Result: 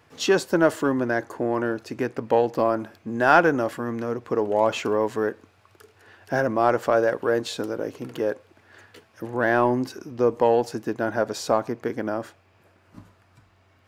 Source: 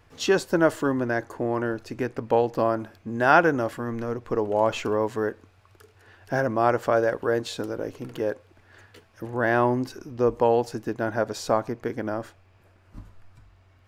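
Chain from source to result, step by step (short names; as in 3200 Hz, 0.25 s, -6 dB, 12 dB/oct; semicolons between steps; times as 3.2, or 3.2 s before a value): HPF 130 Hz 12 dB/oct; in parallel at -10 dB: soft clip -20 dBFS, distortion -8 dB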